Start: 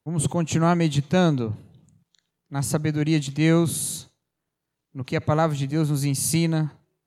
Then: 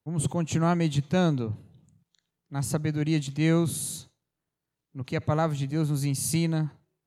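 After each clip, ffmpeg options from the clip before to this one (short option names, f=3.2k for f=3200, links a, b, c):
-af "equalizer=f=87:t=o:w=2.1:g=2.5,volume=-5dB"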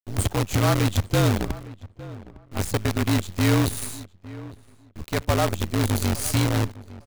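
-filter_complex "[0:a]afreqshift=-47,acrusher=bits=5:dc=4:mix=0:aa=0.000001,asplit=2[a][b];[b]adelay=857,lowpass=f=1.7k:p=1,volume=-17.5dB,asplit=2[c][d];[d]adelay=857,lowpass=f=1.7k:p=1,volume=0.2[e];[a][c][e]amix=inputs=3:normalize=0,volume=3dB"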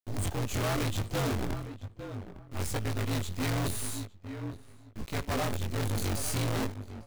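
-af "acrusher=bits=9:mode=log:mix=0:aa=0.000001,flanger=delay=18:depth=6:speed=1,volume=29.5dB,asoftclip=hard,volume=-29.5dB,volume=1.5dB"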